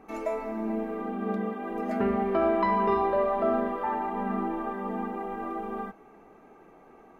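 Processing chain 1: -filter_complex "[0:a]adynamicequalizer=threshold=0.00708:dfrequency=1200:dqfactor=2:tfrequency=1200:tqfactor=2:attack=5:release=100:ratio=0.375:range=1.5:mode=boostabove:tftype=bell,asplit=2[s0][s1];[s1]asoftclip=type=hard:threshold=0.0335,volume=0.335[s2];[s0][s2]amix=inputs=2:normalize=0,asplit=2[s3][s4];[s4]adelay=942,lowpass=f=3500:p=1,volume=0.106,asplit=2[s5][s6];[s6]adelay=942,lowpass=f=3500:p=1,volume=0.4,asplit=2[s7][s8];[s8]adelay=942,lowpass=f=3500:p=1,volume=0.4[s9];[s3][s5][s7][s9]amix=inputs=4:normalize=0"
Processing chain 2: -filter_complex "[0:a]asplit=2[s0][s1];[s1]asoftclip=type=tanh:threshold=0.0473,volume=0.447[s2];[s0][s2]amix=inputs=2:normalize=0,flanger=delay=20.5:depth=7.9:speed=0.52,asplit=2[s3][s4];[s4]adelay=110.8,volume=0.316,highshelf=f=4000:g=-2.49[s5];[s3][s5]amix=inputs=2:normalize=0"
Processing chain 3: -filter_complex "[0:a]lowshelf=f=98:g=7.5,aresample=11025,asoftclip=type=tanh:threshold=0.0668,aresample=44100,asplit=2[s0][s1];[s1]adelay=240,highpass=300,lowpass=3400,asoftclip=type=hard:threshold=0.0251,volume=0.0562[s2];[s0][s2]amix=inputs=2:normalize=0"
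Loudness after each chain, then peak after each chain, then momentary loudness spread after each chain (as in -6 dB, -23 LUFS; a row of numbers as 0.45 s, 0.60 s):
-26.5 LUFS, -29.5 LUFS, -31.0 LUFS; -12.0 dBFS, -14.5 dBFS, -22.5 dBFS; 8 LU, 9 LU, 7 LU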